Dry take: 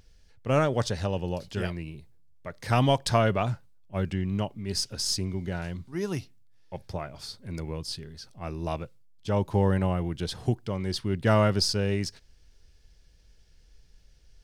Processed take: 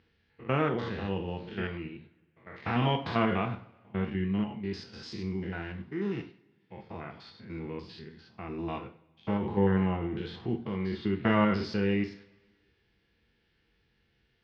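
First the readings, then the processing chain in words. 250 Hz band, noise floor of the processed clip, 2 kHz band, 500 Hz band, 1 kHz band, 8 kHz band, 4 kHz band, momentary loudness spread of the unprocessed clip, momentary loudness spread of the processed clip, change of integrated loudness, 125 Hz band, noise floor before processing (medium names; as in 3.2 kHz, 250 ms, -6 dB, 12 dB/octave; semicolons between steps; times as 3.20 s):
+0.5 dB, -72 dBFS, -0.5 dB, -4.0 dB, -3.0 dB, under -25 dB, -9.5 dB, 16 LU, 18 LU, -3.0 dB, -6.0 dB, -58 dBFS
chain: spectrogram pixelated in time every 100 ms; cabinet simulation 120–3400 Hz, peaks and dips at 130 Hz -7 dB, 250 Hz +4 dB, 610 Hz -9 dB, 2 kHz +4 dB; two-slope reverb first 0.36 s, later 1.5 s, from -21 dB, DRR 4 dB; trim -1 dB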